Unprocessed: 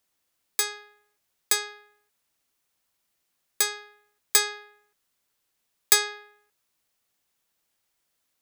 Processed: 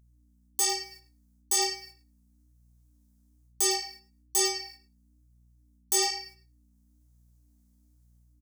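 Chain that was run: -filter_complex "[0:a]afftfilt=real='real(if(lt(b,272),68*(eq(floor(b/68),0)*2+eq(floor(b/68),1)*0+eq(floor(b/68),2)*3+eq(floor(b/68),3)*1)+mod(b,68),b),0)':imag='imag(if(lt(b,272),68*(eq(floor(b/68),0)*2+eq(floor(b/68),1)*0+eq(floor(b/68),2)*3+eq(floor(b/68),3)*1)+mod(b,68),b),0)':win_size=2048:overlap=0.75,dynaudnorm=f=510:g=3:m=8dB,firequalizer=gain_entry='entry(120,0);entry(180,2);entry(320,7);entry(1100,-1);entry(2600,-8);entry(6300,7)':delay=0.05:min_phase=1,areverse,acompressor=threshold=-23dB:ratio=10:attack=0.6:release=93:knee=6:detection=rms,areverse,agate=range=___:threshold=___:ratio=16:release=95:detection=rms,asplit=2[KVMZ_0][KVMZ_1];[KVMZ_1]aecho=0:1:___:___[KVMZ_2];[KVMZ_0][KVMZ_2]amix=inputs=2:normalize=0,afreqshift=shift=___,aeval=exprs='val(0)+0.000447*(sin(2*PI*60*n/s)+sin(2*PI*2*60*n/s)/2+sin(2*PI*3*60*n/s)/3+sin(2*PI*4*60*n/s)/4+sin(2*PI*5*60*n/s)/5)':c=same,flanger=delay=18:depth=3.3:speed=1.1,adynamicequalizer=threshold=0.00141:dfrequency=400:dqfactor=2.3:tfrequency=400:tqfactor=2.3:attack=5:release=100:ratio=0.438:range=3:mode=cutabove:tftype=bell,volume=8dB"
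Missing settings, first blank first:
-20dB, -56dB, 105, 0.15, -14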